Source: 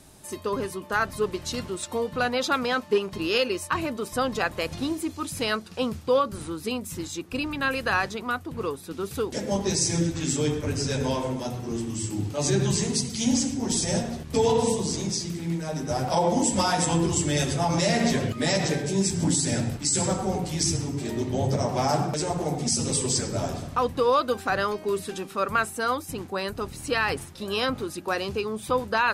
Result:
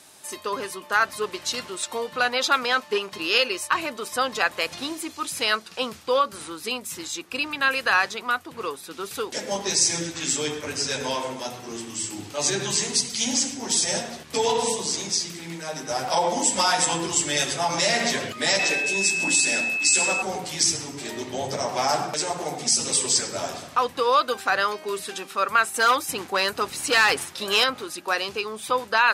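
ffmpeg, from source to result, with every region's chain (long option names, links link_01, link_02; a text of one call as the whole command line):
ffmpeg -i in.wav -filter_complex "[0:a]asettb=1/sr,asplit=3[link_01][link_02][link_03];[link_01]atrim=end=18.594[link_04];[link_02]atrim=start=18.59:end=20.22,asetpts=PTS-STARTPTS,afade=type=in:duration=0.004:curve=qsin,afade=type=out:start_time=1.626:duration=0.004:curve=qsin,highpass=frequency=190:width=0.5412,highpass=frequency=190:width=1.3066,aeval=exprs='val(0)+0.0355*sin(2*PI*2600*n/s)':channel_layout=same[link_05];[link_03]atrim=start=20.216[link_06];[link_04][link_05]acrossfade=duration=0.004:curve1=hsin:curve2=qsin[link_07];[link_07][link_06]acrossfade=duration=0.004:curve1=qsin:curve2=hsin,asettb=1/sr,asplit=3[link_08][link_09][link_10];[link_08]atrim=end=25.744[link_11];[link_09]atrim=start=25.74:end=27.64,asetpts=PTS-STARTPTS,afade=type=in:duration=0.004:curve=qsin,afade=type=out:start_time=1.896:duration=0.004:curve=qsin,acontrast=32,volume=17dB,asoftclip=hard,volume=-17dB[link_12];[link_10]atrim=start=27.636[link_13];[link_11][link_12]acrossfade=duration=0.004:curve1=hsin:curve2=qsin[link_14];[link_14][link_13]acrossfade=duration=0.004:curve1=qsin:curve2=hsin,highpass=frequency=1300:poles=1,highshelf=frequency=7400:gain=-5,volume=7.5dB" out.wav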